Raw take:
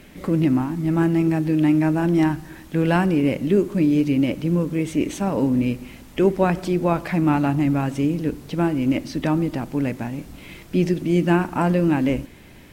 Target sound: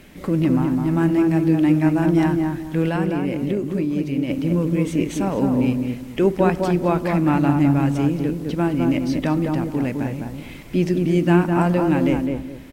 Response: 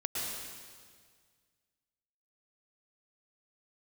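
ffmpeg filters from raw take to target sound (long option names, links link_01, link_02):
-filter_complex "[0:a]asettb=1/sr,asplit=3[link_01][link_02][link_03];[link_01]atrim=end=2.884[link_04];[link_02]atrim=start=2.88:end=4.3,asetpts=PTS-STARTPTS,afade=type=in:duration=0.004:curve=qsin,afade=type=out:start_time=1.416:duration=0.004:curve=qsin,acompressor=threshold=-22dB:ratio=3[link_05];[link_03]atrim=start=4.296[link_06];[link_04][link_05]acrossfade=duration=0.004:curve1=hsin:curve2=qsin[link_07];[link_07][link_06]acrossfade=duration=0.004:curve1=qsin:curve2=hsin,asplit=2[link_08][link_09];[link_09]adelay=208,lowpass=frequency=1300:poles=1,volume=-3dB,asplit=2[link_10][link_11];[link_11]adelay=208,lowpass=frequency=1300:poles=1,volume=0.28,asplit=2[link_12][link_13];[link_13]adelay=208,lowpass=frequency=1300:poles=1,volume=0.28,asplit=2[link_14][link_15];[link_15]adelay=208,lowpass=frequency=1300:poles=1,volume=0.28[link_16];[link_08][link_10][link_12][link_14][link_16]amix=inputs=5:normalize=0"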